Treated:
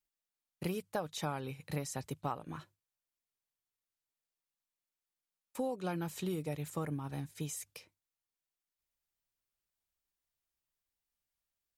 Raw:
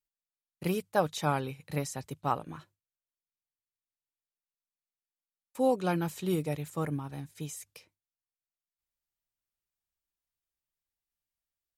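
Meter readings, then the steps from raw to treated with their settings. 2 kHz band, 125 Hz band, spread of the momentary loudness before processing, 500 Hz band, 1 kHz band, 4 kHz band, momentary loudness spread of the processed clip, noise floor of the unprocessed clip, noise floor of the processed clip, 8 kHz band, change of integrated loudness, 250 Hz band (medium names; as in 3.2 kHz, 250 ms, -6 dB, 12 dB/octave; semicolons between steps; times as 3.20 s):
-7.0 dB, -5.0 dB, 14 LU, -8.0 dB, -8.5 dB, -4.0 dB, 7 LU, under -85 dBFS, under -85 dBFS, -2.0 dB, -7.0 dB, -6.0 dB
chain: compression 5:1, threshold -35 dBFS, peak gain reduction 13.5 dB; trim +1 dB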